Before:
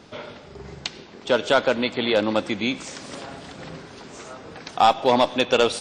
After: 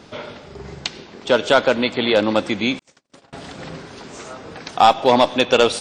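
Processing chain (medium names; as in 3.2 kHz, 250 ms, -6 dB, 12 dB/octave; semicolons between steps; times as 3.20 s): 2.79–3.33 s: gate -32 dBFS, range -52 dB; trim +4 dB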